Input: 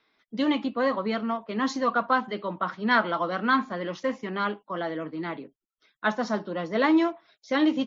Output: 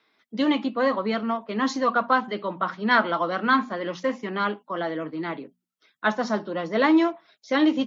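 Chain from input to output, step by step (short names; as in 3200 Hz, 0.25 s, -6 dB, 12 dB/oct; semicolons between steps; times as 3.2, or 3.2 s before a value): HPF 110 Hz; notches 60/120/180/240 Hz; gain +2.5 dB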